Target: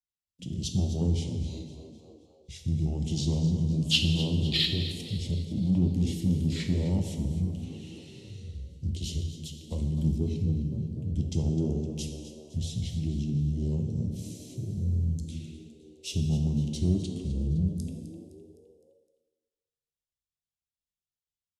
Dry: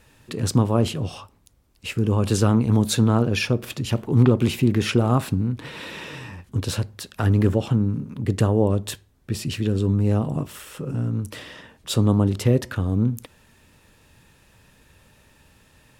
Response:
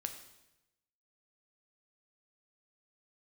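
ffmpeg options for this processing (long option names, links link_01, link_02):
-filter_complex "[0:a]adynamicequalizer=threshold=0.0158:dfrequency=890:dqfactor=1.3:tfrequency=890:tqfactor=1.3:attack=5:release=100:ratio=0.375:range=1.5:mode=cutabove:tftype=bell,afwtdn=0.0355,firequalizer=gain_entry='entry(250,0);entry(380,-11);entry(660,-8);entry(1600,-28);entry(4200,11)':delay=0.05:min_phase=1,agate=range=-33dB:threshold=-50dB:ratio=3:detection=peak,acrossover=split=200|1200[link_01][link_02][link_03];[link_01]acompressor=threshold=-30dB:ratio=6[link_04];[link_04][link_02][link_03]amix=inputs=3:normalize=0,flanger=delay=0.6:depth=8.6:regen=-55:speed=0.53:shape=sinusoidal,asplit=2[link_05][link_06];[link_06]asoftclip=type=tanh:threshold=-24dB,volume=-6dB[link_07];[link_05][link_07]amix=inputs=2:normalize=0,asplit=6[link_08][link_09][link_10][link_11][link_12][link_13];[link_09]adelay=190,afreqshift=100,volume=-14dB[link_14];[link_10]adelay=380,afreqshift=200,volume=-20dB[link_15];[link_11]adelay=570,afreqshift=300,volume=-26dB[link_16];[link_12]adelay=760,afreqshift=400,volume=-32.1dB[link_17];[link_13]adelay=950,afreqshift=500,volume=-38.1dB[link_18];[link_08][link_14][link_15][link_16][link_17][link_18]amix=inputs=6:normalize=0[link_19];[1:a]atrim=start_sample=2205,asetrate=40572,aresample=44100[link_20];[link_19][link_20]afir=irnorm=-1:irlink=0,asetrate=32667,aresample=44100"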